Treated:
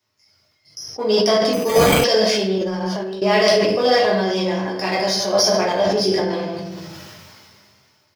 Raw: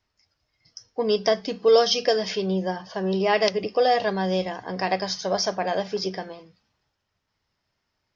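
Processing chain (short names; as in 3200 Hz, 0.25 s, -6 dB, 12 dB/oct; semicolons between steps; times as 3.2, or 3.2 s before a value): half-wave gain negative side -3 dB; HPF 99 Hz 24 dB/oct; high shelf 6200 Hz +11 dB; notches 60/120/180 Hz; speakerphone echo 0.16 s, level -12 dB; shoebox room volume 95 m³, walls mixed, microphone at 1.4 m; 1.53–2.04 careless resampling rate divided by 8×, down none, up hold; 2.58–3.22 negative-ratio compressor -25 dBFS, ratio -0.5; 5.87–6.3 low shelf 420 Hz +6 dB; sustainer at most 23 dB/s; gain -1 dB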